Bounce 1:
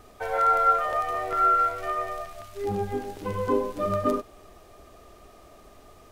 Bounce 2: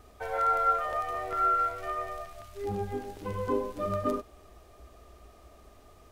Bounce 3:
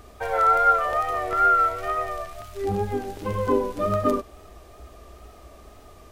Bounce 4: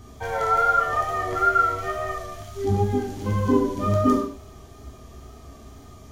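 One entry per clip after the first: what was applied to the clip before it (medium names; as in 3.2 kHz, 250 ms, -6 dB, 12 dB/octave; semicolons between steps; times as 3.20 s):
peaking EQ 62 Hz +12.5 dB 0.53 oct; trim -5 dB
wow and flutter 43 cents; trim +7.5 dB
reverberation, pre-delay 3 ms, DRR -3 dB; trim -6 dB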